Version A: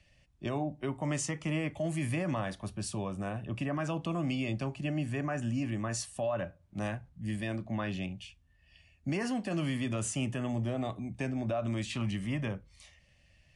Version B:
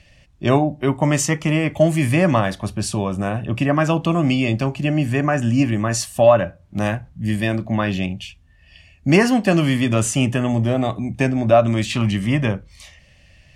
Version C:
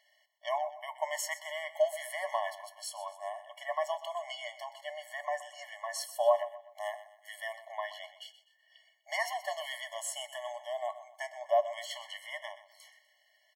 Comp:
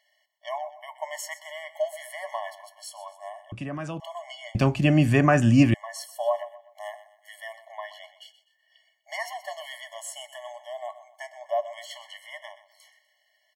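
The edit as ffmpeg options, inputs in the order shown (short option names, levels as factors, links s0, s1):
-filter_complex "[2:a]asplit=3[s0][s1][s2];[s0]atrim=end=3.522[s3];[0:a]atrim=start=3.518:end=4.002[s4];[s1]atrim=start=3.998:end=4.552[s5];[1:a]atrim=start=4.548:end=5.742[s6];[s2]atrim=start=5.738[s7];[s3][s4]acrossfade=d=0.004:c1=hsin:c2=hsin[s8];[s8][s5]acrossfade=d=0.004:c1=hsin:c2=hsin[s9];[s9][s6]acrossfade=d=0.004:c1=hsin:c2=hsin[s10];[s10][s7]acrossfade=d=0.004:c1=hsin:c2=hsin"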